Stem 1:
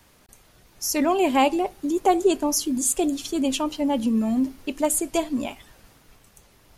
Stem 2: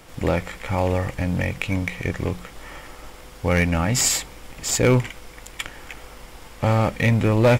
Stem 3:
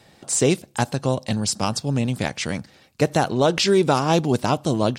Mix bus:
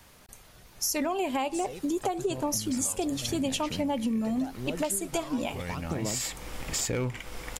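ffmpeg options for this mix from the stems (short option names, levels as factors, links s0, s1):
-filter_complex "[0:a]equalizer=f=310:w=1.8:g=-4,alimiter=limit=0.2:level=0:latency=1:release=189,volume=1.26,asplit=2[s0][s1];[1:a]acompressor=threshold=0.0316:ratio=3,adelay=2100,volume=1.33[s2];[2:a]acompressor=threshold=0.0794:ratio=6,aphaser=in_gain=1:out_gain=1:delay=2.1:decay=0.66:speed=0.84:type=sinusoidal,adelay=1250,volume=0.211[s3];[s1]apad=whole_len=427344[s4];[s2][s4]sidechaincompress=threshold=0.0158:ratio=4:attack=16:release=1010[s5];[s0][s5][s3]amix=inputs=3:normalize=0,acompressor=threshold=0.0501:ratio=6"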